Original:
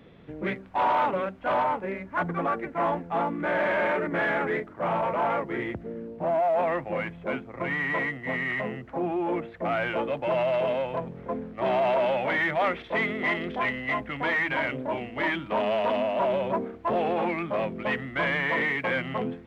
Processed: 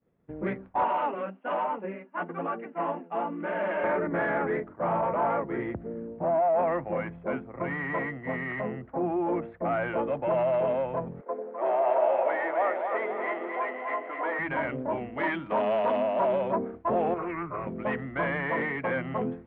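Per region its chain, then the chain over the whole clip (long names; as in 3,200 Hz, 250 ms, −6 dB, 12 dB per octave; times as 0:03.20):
0:00.84–0:03.84: elliptic high-pass filter 180 Hz + parametric band 2,800 Hz +14 dB 0.26 octaves + flanger 1.1 Hz, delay 4.1 ms, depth 5.6 ms, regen −19%
0:11.21–0:14.39: high-pass filter 370 Hz 24 dB per octave + high-shelf EQ 3,000 Hz −11 dB + echo with a time of its own for lows and highs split 630 Hz, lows 87 ms, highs 255 ms, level −5 dB
0:15.17–0:16.55: high-pass filter 140 Hz 6 dB per octave + high-shelf EQ 3,500 Hz +10.5 dB
0:17.14–0:17.67: phaser with its sweep stopped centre 850 Hz, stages 6 + comb filter 0.9 ms, depth 81% + highs frequency-modulated by the lows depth 0.19 ms
whole clip: downward expander −39 dBFS; low-pass filter 1,500 Hz 12 dB per octave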